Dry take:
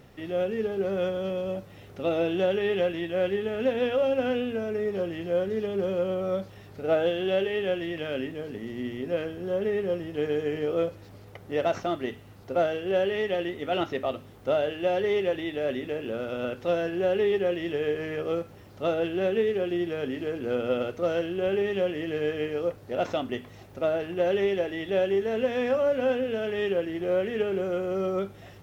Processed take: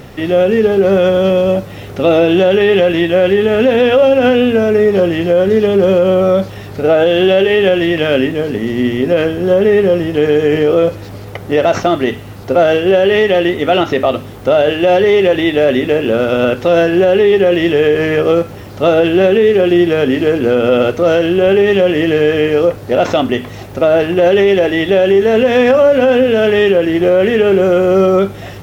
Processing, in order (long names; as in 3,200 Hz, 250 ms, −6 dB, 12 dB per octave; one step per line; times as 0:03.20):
boost into a limiter +20.5 dB
level −1.5 dB